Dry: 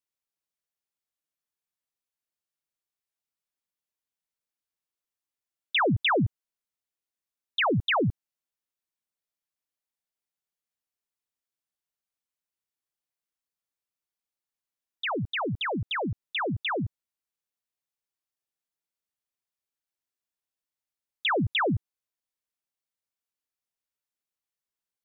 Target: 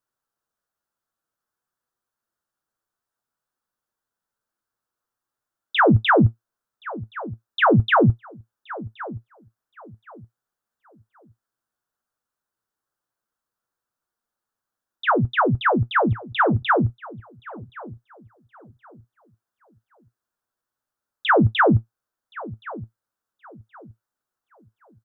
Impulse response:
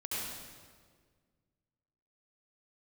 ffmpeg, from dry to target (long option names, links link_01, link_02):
-filter_complex "[0:a]flanger=delay=8.1:depth=1:regen=59:speed=0.58:shape=sinusoidal,acontrast=80,highshelf=frequency=1800:width_type=q:width=3:gain=-7,asplit=2[link_01][link_02];[link_02]adelay=1072,lowpass=frequency=1700:poles=1,volume=-18dB,asplit=2[link_03][link_04];[link_04]adelay=1072,lowpass=frequency=1700:poles=1,volume=0.3,asplit=2[link_05][link_06];[link_06]adelay=1072,lowpass=frequency=1700:poles=1,volume=0.3[link_07];[link_03][link_05][link_07]amix=inputs=3:normalize=0[link_08];[link_01][link_08]amix=inputs=2:normalize=0,alimiter=level_in=14dB:limit=-1dB:release=50:level=0:latency=1,volume=-7.5dB"